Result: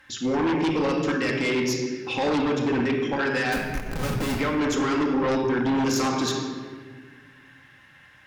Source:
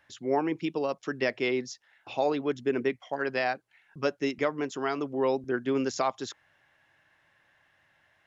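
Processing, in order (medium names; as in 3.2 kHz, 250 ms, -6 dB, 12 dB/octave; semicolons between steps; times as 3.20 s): peaking EQ 660 Hz -14 dB 0.44 oct; peak limiter -24.5 dBFS, peak gain reduction 9 dB; 3.52–4.36 s: Schmitt trigger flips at -53.5 dBFS; simulated room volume 1700 m³, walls mixed, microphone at 2.1 m; Chebyshev shaper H 5 -6 dB, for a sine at -18 dBFS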